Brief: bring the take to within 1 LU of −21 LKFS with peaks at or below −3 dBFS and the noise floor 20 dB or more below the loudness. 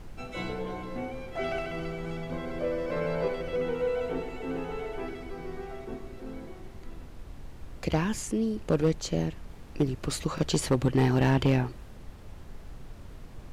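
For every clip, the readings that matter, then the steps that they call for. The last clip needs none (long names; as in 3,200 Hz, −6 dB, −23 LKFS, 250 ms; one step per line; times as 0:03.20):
share of clipped samples 0.4%; peaks flattened at −16.5 dBFS; background noise floor −46 dBFS; target noise floor −51 dBFS; integrated loudness −30.5 LKFS; sample peak −16.5 dBFS; target loudness −21.0 LKFS
→ clipped peaks rebuilt −16.5 dBFS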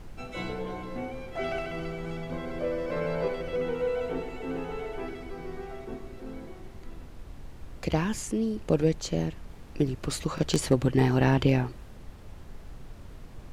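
share of clipped samples 0.0%; background noise floor −46 dBFS; target noise floor −50 dBFS
→ noise reduction from a noise print 6 dB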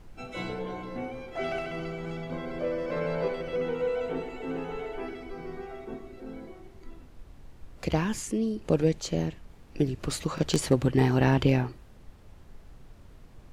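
background noise floor −51 dBFS; integrated loudness −30.0 LKFS; sample peak −7.5 dBFS; target loudness −21.0 LKFS
→ level +9 dB
brickwall limiter −3 dBFS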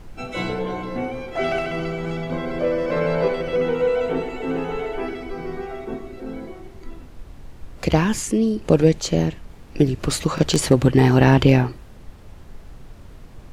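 integrated loudness −21.0 LKFS; sample peak −3.0 dBFS; background noise floor −42 dBFS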